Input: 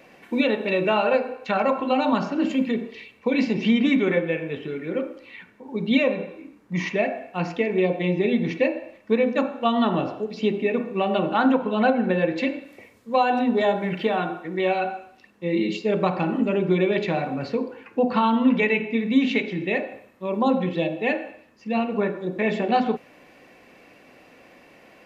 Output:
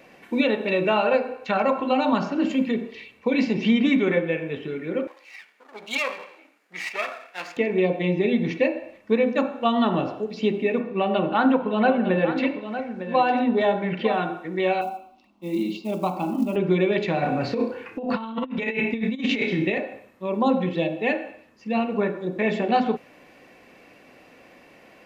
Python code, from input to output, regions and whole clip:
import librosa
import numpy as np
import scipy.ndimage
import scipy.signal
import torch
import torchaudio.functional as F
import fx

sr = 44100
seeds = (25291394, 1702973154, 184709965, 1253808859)

y = fx.chain(x, sr, fx.lower_of_two(delay_ms=0.42),
    fx.highpass(hz=800.0, slope=12), at=(5.07, 7.57))
y = fx.chain(y, sr, fx.lowpass(hz=4400.0, slope=12),
    fx.echo_single(ms=906, db=-10.5), at=(10.8, 14.14))
y = fx.chain(y, sr, fx.lowpass(hz=4300.0, slope=12),
    fx.quant_float(bits=4),
    fx.fixed_phaser(hz=460.0, stages=6), at=(14.81, 16.56))
y = fx.chain(y, sr, fx.room_flutter(wall_m=5.4, rt60_s=0.31),
    fx.over_compress(threshold_db=-24.0, ratio=-0.5), at=(17.22, 19.78))